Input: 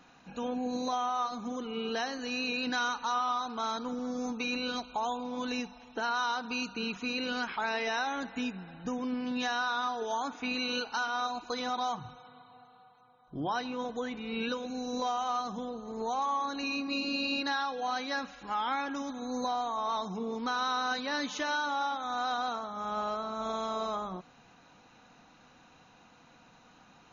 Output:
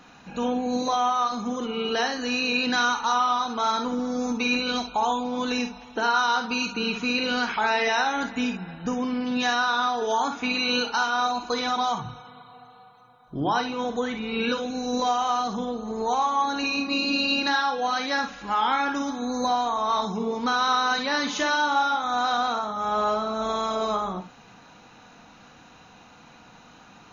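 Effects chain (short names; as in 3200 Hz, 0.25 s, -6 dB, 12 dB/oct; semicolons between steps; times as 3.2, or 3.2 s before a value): non-linear reverb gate 80 ms rising, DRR 5.5 dB; gain +7.5 dB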